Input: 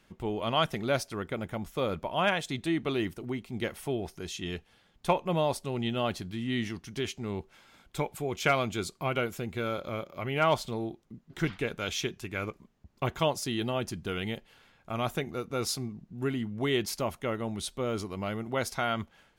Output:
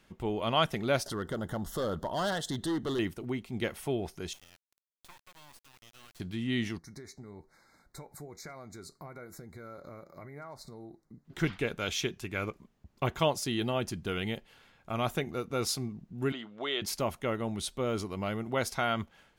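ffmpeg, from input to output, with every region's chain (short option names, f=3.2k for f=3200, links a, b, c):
-filter_complex "[0:a]asettb=1/sr,asplit=3[a][b][c];[a]atrim=end=1.064[d];[b]atrim=start=1.06:end=2.99,asetpts=PTS-STARTPTS,afade=t=in:d=0.004:c=qsin,afade=t=out:st=1.926:d=0.004:c=qsin,acompressor=mode=upward:threshold=-29dB:ratio=2.5:attack=3.2:release=140:knee=2.83:detection=peak,volume=27.5dB,asoftclip=hard,volume=-27.5dB,asuperstop=centerf=2400:order=4:qfactor=2.2[e];[c]atrim=start=2.986[f];[d][e]acrossfade=d=0.004:c1=hsin:c2=qsin[g];[g][f]acrossfade=d=0.004:c1=qsin:c2=hsin,asettb=1/sr,asplit=3[h][i][j];[h]atrim=end=4.334[k];[i]atrim=start=4.33:end=6.2,asetpts=PTS-STARTPTS,afade=t=in:d=0.004:c=qsin,afade=t=out:st=1.866:d=0.004:c=qsin,highpass=f=1k:w=0.5412,highpass=f=1k:w=1.3066,acompressor=threshold=-55dB:ratio=2.5:attack=3.2:release=140:knee=1:detection=peak,acrusher=bits=6:dc=4:mix=0:aa=0.000001[l];[j]atrim=start=6.196[m];[k][l]acrossfade=d=0.004:c1=hsin:c2=qsin[n];[n][m]acrossfade=d=0.004:c1=qsin:c2=hsin,asettb=1/sr,asplit=3[o][p][q];[o]atrim=end=6.784[r];[p]atrim=start=6.78:end=11.25,asetpts=PTS-STARTPTS,afade=t=in:d=0.004:c=qsin,afade=t=out:st=4.466:d=0.004:c=qsin,asuperstop=centerf=2900:order=12:qfactor=1.8,acompressor=threshold=-38dB:ratio=6:attack=3.2:release=140:knee=1:detection=peak,flanger=delay=5.9:depth=1.6:regen=81:speed=1.2:shape=triangular[s];[q]atrim=start=11.246[t];[r][s]acrossfade=d=0.004:c1=hsin:c2=qsin[u];[u][t]acrossfade=d=0.004:c1=qsin:c2=hsin,asettb=1/sr,asplit=3[v][w][x];[v]atrim=end=16.324[y];[w]atrim=start=16.32:end=16.82,asetpts=PTS-STARTPTS,afade=t=in:d=0.004:c=qsin,afade=t=out:st=0.496:d=0.004:c=qsin,acompressor=threshold=-29dB:ratio=2.5:attack=3.2:release=140:knee=1:detection=peak,highpass=430,equalizer=f=590:t=q:w=4:g=5,equalizer=f=1.3k:t=q:w=4:g=7,equalizer=f=3.5k:t=q:w=4:g=9,equalizer=f=5.7k:t=q:w=4:g=-6,lowpass=f=6.7k:w=0.5412,lowpass=f=6.7k:w=1.3066[z];[x]atrim=start=16.816[aa];[y][z]acrossfade=d=0.004:c1=hsin:c2=qsin[ab];[ab][aa]acrossfade=d=0.004:c1=qsin:c2=hsin"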